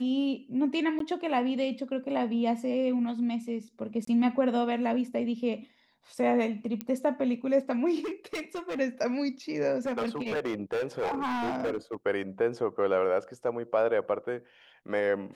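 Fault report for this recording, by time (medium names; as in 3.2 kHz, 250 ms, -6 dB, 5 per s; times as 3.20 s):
0.99–1.00 s: dropout 13 ms
4.05–4.07 s: dropout 24 ms
6.81 s: pop -18 dBFS
8.00–8.80 s: clipped -30.5 dBFS
9.86–11.95 s: clipped -26.5 dBFS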